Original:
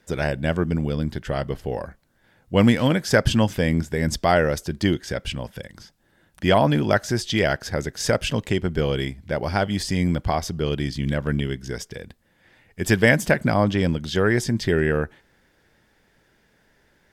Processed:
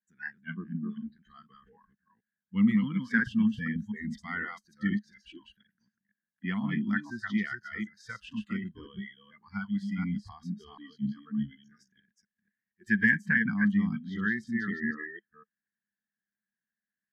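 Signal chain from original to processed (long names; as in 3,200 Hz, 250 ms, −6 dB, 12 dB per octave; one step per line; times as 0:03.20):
delay that plays each chunk backwards 245 ms, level −3 dB
noise reduction from a noise print of the clip's start 26 dB
pair of resonant band-passes 590 Hz, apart 3 octaves
level −1 dB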